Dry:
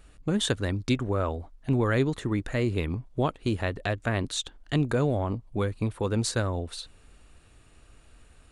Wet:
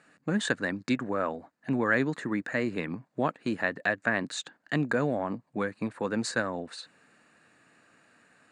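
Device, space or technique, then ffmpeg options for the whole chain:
television speaker: -af "highpass=f=170:w=0.5412,highpass=f=170:w=1.3066,equalizer=f=390:t=q:w=4:g=-6,equalizer=f=1.7k:t=q:w=4:g=9,equalizer=f=3.3k:t=q:w=4:g=-10,equalizer=f=5.7k:t=q:w=4:g=-7,lowpass=f=7.7k:w=0.5412,lowpass=f=7.7k:w=1.3066"

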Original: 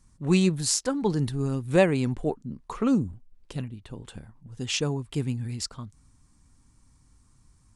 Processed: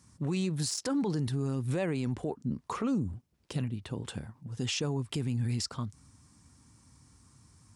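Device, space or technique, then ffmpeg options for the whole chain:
broadcast voice chain: -af "highpass=f=73:w=0.5412,highpass=f=73:w=1.3066,deesser=0.45,acompressor=threshold=-28dB:ratio=4,equalizer=f=5.3k:t=o:w=0.26:g=3.5,alimiter=level_in=3.5dB:limit=-24dB:level=0:latency=1:release=39,volume=-3.5dB,volume=4dB"

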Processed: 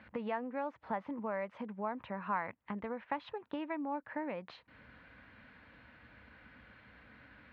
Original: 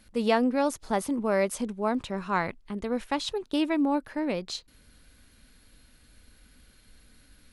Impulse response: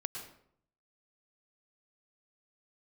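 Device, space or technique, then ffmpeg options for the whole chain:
bass amplifier: -af "acompressor=threshold=-41dB:ratio=6,highpass=f=81:w=0.5412,highpass=f=81:w=1.3066,equalizer=f=88:t=q:w=4:g=-9,equalizer=f=160:t=q:w=4:g=-7,equalizer=f=250:t=q:w=4:g=-5,equalizer=f=380:t=q:w=4:g=-10,equalizer=f=950:t=q:w=4:g=5,equalizer=f=1.8k:t=q:w=4:g=3,lowpass=f=2.4k:w=0.5412,lowpass=f=2.4k:w=1.3066,volume=6.5dB"

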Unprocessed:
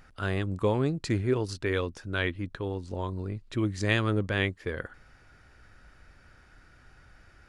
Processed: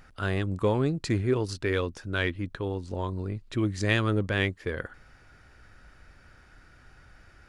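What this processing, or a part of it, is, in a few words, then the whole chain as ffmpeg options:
parallel distortion: -filter_complex "[0:a]asplit=2[a][b];[b]asoftclip=type=hard:threshold=-25.5dB,volume=-14dB[c];[a][c]amix=inputs=2:normalize=0"

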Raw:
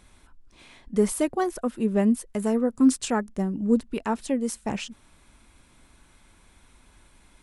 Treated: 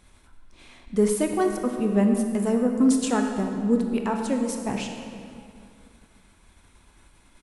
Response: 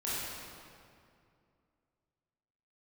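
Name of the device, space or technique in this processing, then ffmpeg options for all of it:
keyed gated reverb: -filter_complex "[0:a]asplit=2[a][b];[b]adelay=481,lowpass=f=2k:p=1,volume=-23.5dB,asplit=2[c][d];[d]adelay=481,lowpass=f=2k:p=1,volume=0.48,asplit=2[e][f];[f]adelay=481,lowpass=f=2k:p=1,volume=0.48[g];[a][c][e][g]amix=inputs=4:normalize=0,asplit=3[h][i][j];[1:a]atrim=start_sample=2205[k];[i][k]afir=irnorm=-1:irlink=0[l];[j]apad=whole_len=391017[m];[l][m]sidechaingate=range=-33dB:threshold=-54dB:ratio=16:detection=peak,volume=-6.5dB[n];[h][n]amix=inputs=2:normalize=0,volume=-2.5dB"

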